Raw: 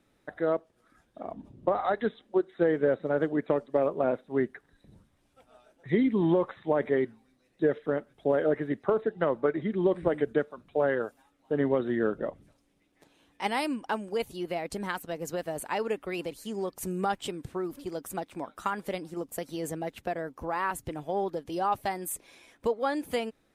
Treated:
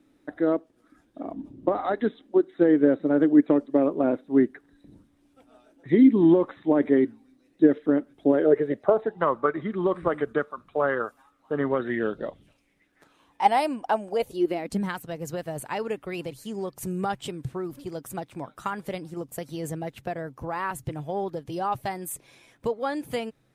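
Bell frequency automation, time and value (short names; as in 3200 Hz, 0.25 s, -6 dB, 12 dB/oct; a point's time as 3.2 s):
bell +14 dB 0.54 oct
8.29 s 290 Hz
9.34 s 1200 Hz
11.7 s 1200 Hz
12.2 s 4200 Hz
13.55 s 710 Hz
14.11 s 710 Hz
14.97 s 130 Hz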